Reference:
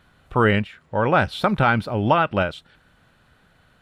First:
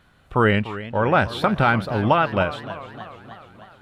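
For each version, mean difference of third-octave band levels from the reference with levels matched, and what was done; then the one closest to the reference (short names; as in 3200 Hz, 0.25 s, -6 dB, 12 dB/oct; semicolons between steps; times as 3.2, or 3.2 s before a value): 4.0 dB: warbling echo 0.301 s, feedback 62%, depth 179 cents, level -14.5 dB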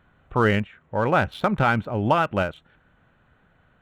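2.5 dB: Wiener smoothing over 9 samples; gain -2 dB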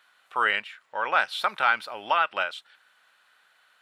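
9.0 dB: HPF 1100 Hz 12 dB/oct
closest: second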